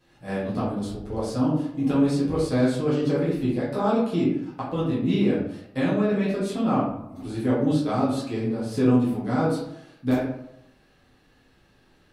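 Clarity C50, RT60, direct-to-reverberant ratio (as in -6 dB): 2.0 dB, 0.75 s, -9.5 dB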